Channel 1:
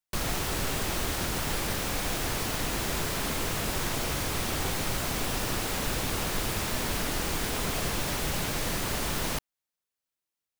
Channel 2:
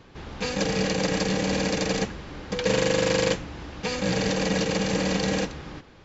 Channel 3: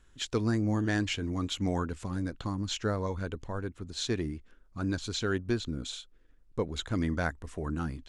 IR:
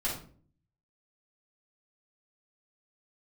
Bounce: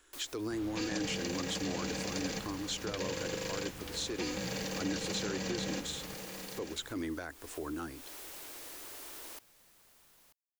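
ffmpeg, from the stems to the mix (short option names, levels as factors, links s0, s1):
-filter_complex "[0:a]volume=0.141,asplit=2[s0][s1];[s1]volume=0.126[s2];[1:a]acompressor=threshold=0.0631:ratio=6,adelay=350,volume=0.794,asplit=2[s3][s4];[s4]volume=0.299[s5];[2:a]volume=1.41,asplit=2[s6][s7];[s7]apad=whole_len=467458[s8];[s0][s8]sidechaincompress=threshold=0.0251:ratio=4:attack=23:release=443[s9];[s9][s6]amix=inputs=2:normalize=0,lowshelf=f=250:t=q:w=3:g=-7,alimiter=limit=0.0841:level=0:latency=1:release=17,volume=1[s10];[s2][s5]amix=inputs=2:normalize=0,aecho=0:1:937:1[s11];[s3][s10][s11]amix=inputs=3:normalize=0,lowshelf=f=320:g=-10,acrossover=split=270[s12][s13];[s13]acompressor=threshold=0.00316:ratio=1.5[s14];[s12][s14]amix=inputs=2:normalize=0,crystalizer=i=1:c=0"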